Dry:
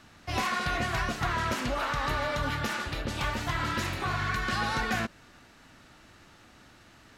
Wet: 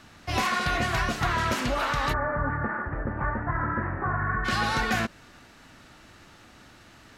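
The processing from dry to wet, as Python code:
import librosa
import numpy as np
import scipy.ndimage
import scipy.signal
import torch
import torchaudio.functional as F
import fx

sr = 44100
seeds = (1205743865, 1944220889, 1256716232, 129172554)

y = fx.cheby1_lowpass(x, sr, hz=1800.0, order=5, at=(2.12, 4.44), fade=0.02)
y = y * librosa.db_to_amplitude(3.5)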